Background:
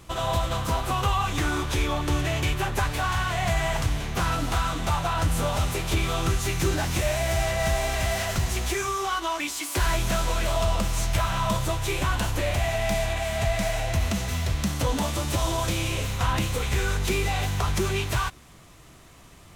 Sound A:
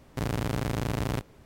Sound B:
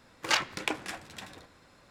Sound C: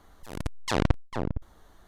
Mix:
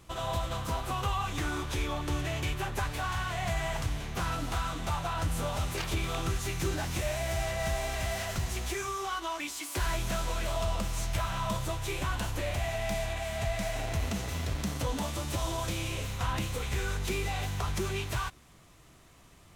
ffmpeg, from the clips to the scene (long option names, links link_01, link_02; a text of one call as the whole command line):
ffmpeg -i bed.wav -i cue0.wav -i cue1.wav -filter_complex "[0:a]volume=-7dB[link_01];[2:a]acrusher=bits=5:mix=0:aa=0.5[link_02];[1:a]highpass=210[link_03];[link_02]atrim=end=1.9,asetpts=PTS-STARTPTS,volume=-13dB,afade=type=in:duration=0.004:curve=hsin,afade=type=out:start_time=1.896:duration=0.004:curve=hsin,adelay=5470[link_04];[link_03]atrim=end=1.45,asetpts=PTS-STARTPTS,volume=-11dB,afade=type=in:duration=0.004:curve=hsin,afade=type=out:start_time=1.446:duration=0.004:curve=hsin,adelay=13580[link_05];[link_01][link_04][link_05]amix=inputs=3:normalize=0" out.wav